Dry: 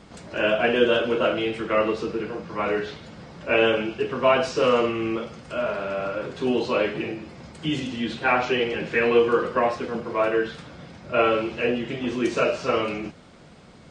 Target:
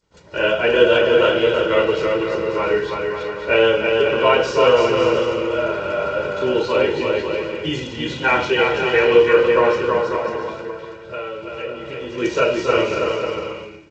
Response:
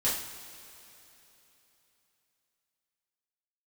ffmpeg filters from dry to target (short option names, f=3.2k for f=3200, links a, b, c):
-filter_complex "[0:a]agate=range=-33dB:threshold=-34dB:ratio=3:detection=peak,aecho=1:1:2.1:0.58,asettb=1/sr,asplit=3[a][b][c];[a]atrim=end=10.164[d];[b]atrim=start=10.16:end=12.18,asetpts=PTS-STARTPTS,afade=t=in:d=0.004:c=qsin,afade=t=out:st=2.016:d=0.004:c=qsin,acompressor=threshold=-36dB:ratio=2.5[e];[c]atrim=start=12.176[f];[d][e]acrossfade=d=0.004:c1=hsin:c2=qsin[g];[g][f]acrossfade=d=0.004:c1=qsin:c2=hsin,aecho=1:1:330|544.5|683.9|774.6|833.5:0.631|0.398|0.251|0.158|0.1,volume=2.5dB" -ar 16000 -c:a g722